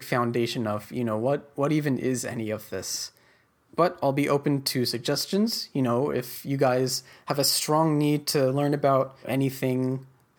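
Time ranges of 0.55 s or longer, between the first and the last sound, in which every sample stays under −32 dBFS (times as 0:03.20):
0:03.06–0:03.78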